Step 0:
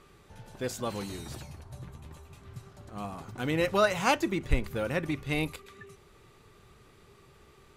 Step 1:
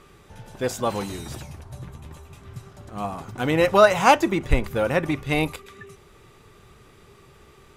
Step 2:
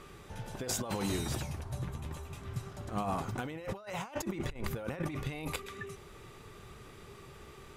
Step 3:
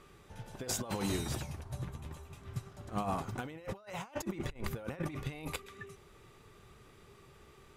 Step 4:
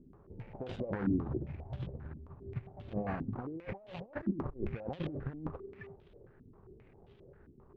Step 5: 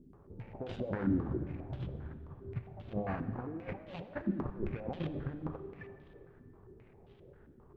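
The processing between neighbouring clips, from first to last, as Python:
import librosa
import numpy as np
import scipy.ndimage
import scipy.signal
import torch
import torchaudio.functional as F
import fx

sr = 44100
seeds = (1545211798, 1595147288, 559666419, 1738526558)

y1 = fx.notch(x, sr, hz=4300.0, q=16.0)
y1 = fx.dynamic_eq(y1, sr, hz=800.0, q=1.0, threshold_db=-43.0, ratio=4.0, max_db=6)
y1 = F.gain(torch.from_numpy(y1), 6.0).numpy()
y2 = fx.over_compress(y1, sr, threshold_db=-31.0, ratio=-1.0)
y2 = F.gain(torch.from_numpy(y2), -7.0).numpy()
y3 = fx.upward_expand(y2, sr, threshold_db=-45.0, expansion=1.5)
y4 = scipy.ndimage.median_filter(y3, 41, mode='constant')
y4 = fx.filter_held_lowpass(y4, sr, hz=7.5, low_hz=260.0, high_hz=3300.0)
y5 = fx.rev_plate(y4, sr, seeds[0], rt60_s=2.7, hf_ratio=0.65, predelay_ms=0, drr_db=10.0)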